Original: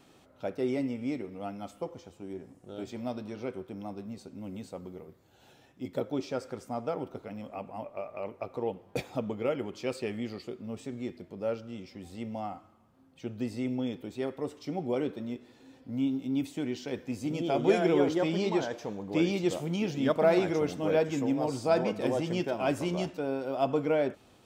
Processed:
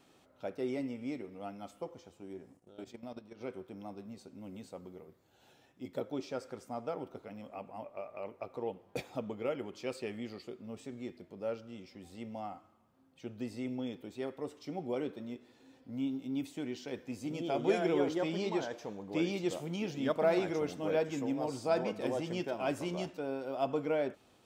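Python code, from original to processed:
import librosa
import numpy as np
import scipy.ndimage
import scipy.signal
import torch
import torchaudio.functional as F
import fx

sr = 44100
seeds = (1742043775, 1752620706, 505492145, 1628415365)

y = fx.low_shelf(x, sr, hz=170.0, db=-5.0)
y = fx.level_steps(y, sr, step_db=13, at=(2.57, 3.41))
y = F.gain(torch.from_numpy(y), -4.5).numpy()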